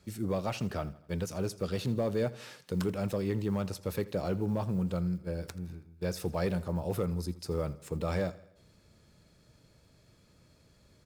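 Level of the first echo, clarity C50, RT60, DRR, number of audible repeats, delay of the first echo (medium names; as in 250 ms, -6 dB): -19.0 dB, no reverb, no reverb, no reverb, 3, 82 ms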